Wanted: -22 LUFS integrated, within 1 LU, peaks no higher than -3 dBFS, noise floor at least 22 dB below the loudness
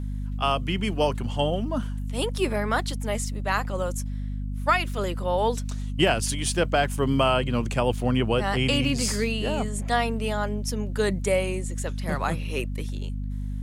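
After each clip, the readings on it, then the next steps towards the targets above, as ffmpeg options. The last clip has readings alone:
hum 50 Hz; harmonics up to 250 Hz; hum level -28 dBFS; loudness -26.0 LUFS; peak -8.5 dBFS; loudness target -22.0 LUFS
-> -af "bandreject=f=50:t=h:w=4,bandreject=f=100:t=h:w=4,bandreject=f=150:t=h:w=4,bandreject=f=200:t=h:w=4,bandreject=f=250:t=h:w=4"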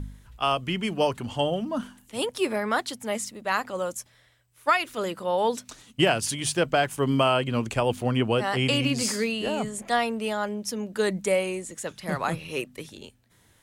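hum none; loudness -26.5 LUFS; peak -9.0 dBFS; loudness target -22.0 LUFS
-> -af "volume=4.5dB"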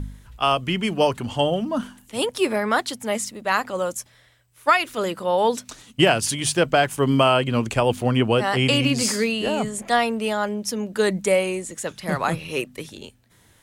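loudness -22.0 LUFS; peak -4.5 dBFS; noise floor -57 dBFS

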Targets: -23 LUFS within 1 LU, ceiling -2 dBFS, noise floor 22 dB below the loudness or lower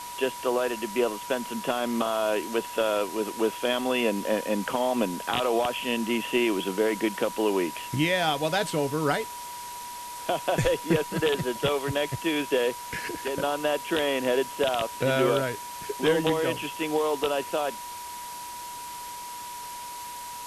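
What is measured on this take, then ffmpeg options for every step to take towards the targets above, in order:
steady tone 970 Hz; tone level -37 dBFS; noise floor -38 dBFS; noise floor target -50 dBFS; loudness -27.5 LUFS; peak -10.0 dBFS; loudness target -23.0 LUFS
-> -af "bandreject=f=970:w=30"
-af "afftdn=nr=12:nf=-38"
-af "volume=4.5dB"

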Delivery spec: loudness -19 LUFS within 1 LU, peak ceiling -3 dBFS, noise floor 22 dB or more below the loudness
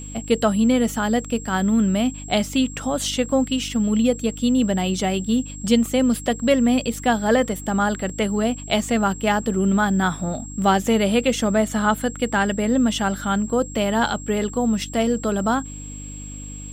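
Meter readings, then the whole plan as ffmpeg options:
hum 50 Hz; harmonics up to 300 Hz; hum level -34 dBFS; steady tone 7600 Hz; tone level -37 dBFS; loudness -21.0 LUFS; peak -5.5 dBFS; loudness target -19.0 LUFS
-> -af "bandreject=f=50:t=h:w=4,bandreject=f=100:t=h:w=4,bandreject=f=150:t=h:w=4,bandreject=f=200:t=h:w=4,bandreject=f=250:t=h:w=4,bandreject=f=300:t=h:w=4"
-af "bandreject=f=7.6k:w=30"
-af "volume=2dB"

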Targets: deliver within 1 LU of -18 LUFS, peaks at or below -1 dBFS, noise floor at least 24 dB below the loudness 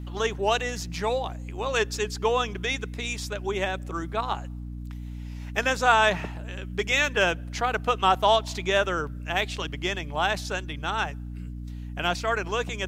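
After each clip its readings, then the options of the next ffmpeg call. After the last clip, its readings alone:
hum 60 Hz; harmonics up to 300 Hz; hum level -33 dBFS; loudness -26.5 LUFS; peak -7.0 dBFS; loudness target -18.0 LUFS
-> -af "bandreject=f=60:t=h:w=6,bandreject=f=120:t=h:w=6,bandreject=f=180:t=h:w=6,bandreject=f=240:t=h:w=6,bandreject=f=300:t=h:w=6"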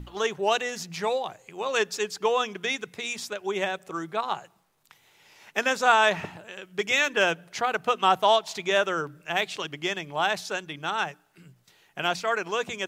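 hum none; loudness -26.5 LUFS; peak -7.0 dBFS; loudness target -18.0 LUFS
-> -af "volume=8.5dB,alimiter=limit=-1dB:level=0:latency=1"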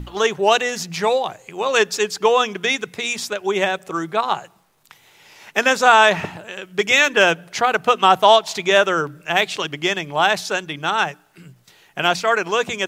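loudness -18.0 LUFS; peak -1.0 dBFS; noise floor -55 dBFS

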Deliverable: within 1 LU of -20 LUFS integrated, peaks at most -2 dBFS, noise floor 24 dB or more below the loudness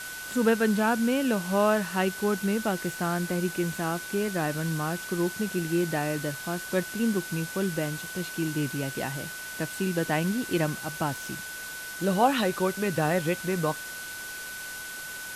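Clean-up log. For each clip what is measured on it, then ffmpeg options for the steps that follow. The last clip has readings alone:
steady tone 1500 Hz; tone level -38 dBFS; noise floor -38 dBFS; noise floor target -53 dBFS; loudness -28.5 LUFS; peak -9.0 dBFS; loudness target -20.0 LUFS
-> -af "bandreject=f=1.5k:w=30"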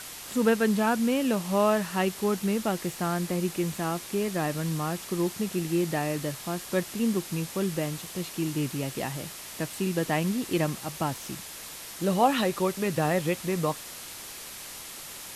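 steady tone none; noise floor -42 dBFS; noise floor target -53 dBFS
-> -af "afftdn=nr=11:nf=-42"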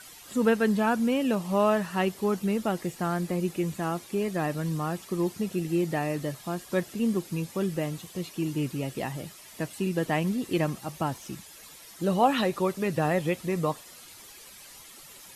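noise floor -49 dBFS; noise floor target -53 dBFS
-> -af "afftdn=nr=6:nf=-49"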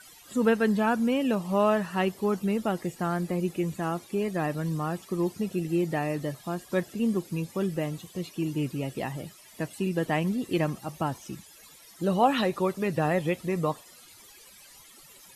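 noise floor -52 dBFS; noise floor target -53 dBFS
-> -af "afftdn=nr=6:nf=-52"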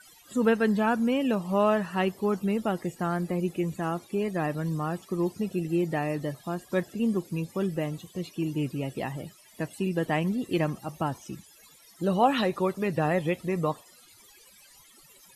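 noise floor -56 dBFS; loudness -28.5 LUFS; peak -9.5 dBFS; loudness target -20.0 LUFS
-> -af "volume=8.5dB,alimiter=limit=-2dB:level=0:latency=1"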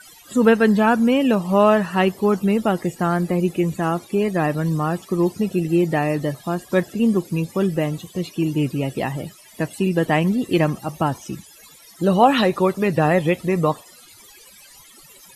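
loudness -20.0 LUFS; peak -2.0 dBFS; noise floor -47 dBFS

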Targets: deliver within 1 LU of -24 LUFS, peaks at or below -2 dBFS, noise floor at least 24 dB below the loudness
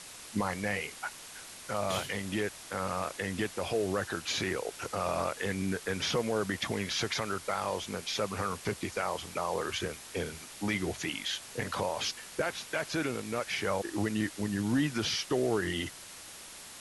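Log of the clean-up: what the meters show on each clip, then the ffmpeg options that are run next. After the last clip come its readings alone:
noise floor -48 dBFS; noise floor target -57 dBFS; loudness -33.0 LUFS; peak -18.5 dBFS; loudness target -24.0 LUFS
-> -af "afftdn=nr=9:nf=-48"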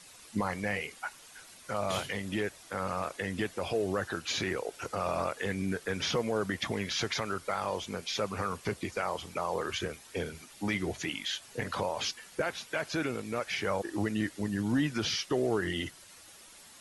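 noise floor -54 dBFS; noise floor target -58 dBFS
-> -af "afftdn=nr=6:nf=-54"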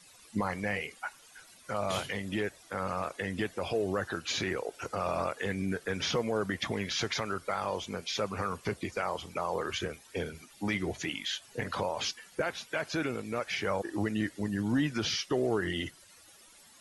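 noise floor -57 dBFS; noise floor target -58 dBFS
-> -af "afftdn=nr=6:nf=-57"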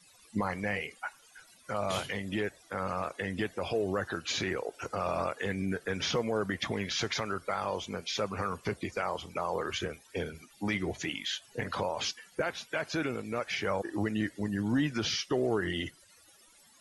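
noise floor -60 dBFS; loudness -33.5 LUFS; peak -19.0 dBFS; loudness target -24.0 LUFS
-> -af "volume=9.5dB"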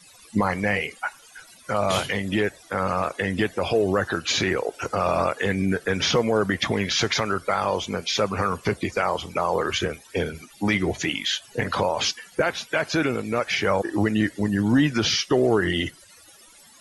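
loudness -24.0 LUFS; peak -9.5 dBFS; noise floor -51 dBFS

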